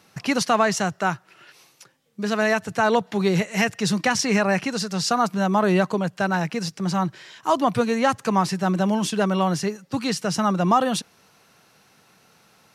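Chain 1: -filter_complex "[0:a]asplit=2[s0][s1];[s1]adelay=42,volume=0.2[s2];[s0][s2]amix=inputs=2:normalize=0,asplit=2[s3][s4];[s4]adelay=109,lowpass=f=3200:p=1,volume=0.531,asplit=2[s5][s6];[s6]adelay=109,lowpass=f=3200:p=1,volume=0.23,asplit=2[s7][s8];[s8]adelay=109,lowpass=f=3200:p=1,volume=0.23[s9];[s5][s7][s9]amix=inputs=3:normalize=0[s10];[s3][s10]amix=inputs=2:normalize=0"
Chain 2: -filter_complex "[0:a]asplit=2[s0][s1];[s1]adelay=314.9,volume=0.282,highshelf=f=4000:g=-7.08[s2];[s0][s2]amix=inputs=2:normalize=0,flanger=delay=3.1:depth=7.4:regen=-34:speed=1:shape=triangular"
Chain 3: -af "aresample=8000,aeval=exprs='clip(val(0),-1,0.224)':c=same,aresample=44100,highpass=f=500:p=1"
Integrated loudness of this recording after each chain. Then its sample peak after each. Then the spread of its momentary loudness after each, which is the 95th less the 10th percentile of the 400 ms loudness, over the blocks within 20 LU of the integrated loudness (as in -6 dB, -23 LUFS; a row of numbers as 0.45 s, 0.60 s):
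-21.5 LUFS, -26.0 LUFS, -26.5 LUFS; -5.0 dBFS, -9.5 dBFS, -9.0 dBFS; 7 LU, 7 LU, 9 LU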